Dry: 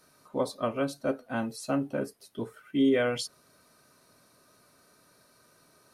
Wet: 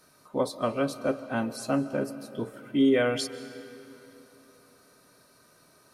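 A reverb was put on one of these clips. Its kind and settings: digital reverb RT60 3.4 s, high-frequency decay 0.7×, pre-delay 0.105 s, DRR 13.5 dB; gain +2 dB

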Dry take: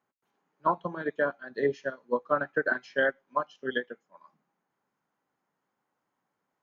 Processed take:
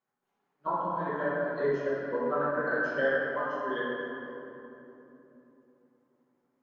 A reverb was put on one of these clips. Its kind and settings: shoebox room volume 160 m³, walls hard, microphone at 1.1 m; gain -9.5 dB

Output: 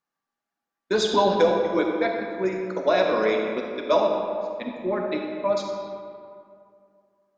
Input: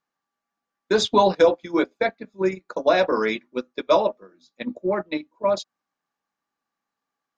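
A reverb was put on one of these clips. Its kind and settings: digital reverb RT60 2.4 s, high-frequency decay 0.55×, pre-delay 10 ms, DRR 1.5 dB; gain -3.5 dB

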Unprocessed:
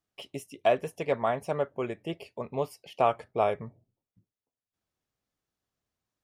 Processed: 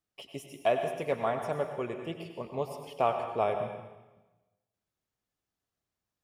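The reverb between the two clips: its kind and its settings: plate-style reverb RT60 1.1 s, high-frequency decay 1×, pre-delay 80 ms, DRR 5.5 dB; gain -3 dB

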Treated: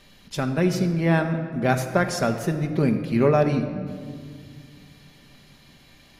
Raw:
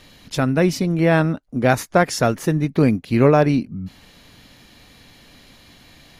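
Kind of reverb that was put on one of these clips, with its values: shoebox room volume 3700 m³, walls mixed, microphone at 1.2 m; gain -6 dB

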